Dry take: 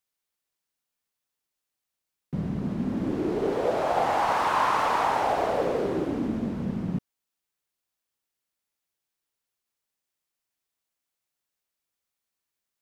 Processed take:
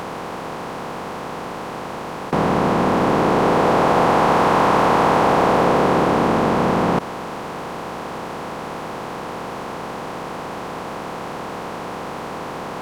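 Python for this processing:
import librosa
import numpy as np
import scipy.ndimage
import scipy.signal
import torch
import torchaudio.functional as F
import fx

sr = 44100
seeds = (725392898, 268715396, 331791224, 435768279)

y = fx.bin_compress(x, sr, power=0.2)
y = y * 10.0 ** (1.5 / 20.0)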